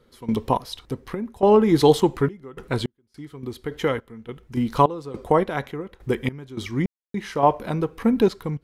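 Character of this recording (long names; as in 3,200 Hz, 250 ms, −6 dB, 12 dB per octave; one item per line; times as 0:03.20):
sample-and-hold tremolo, depth 100%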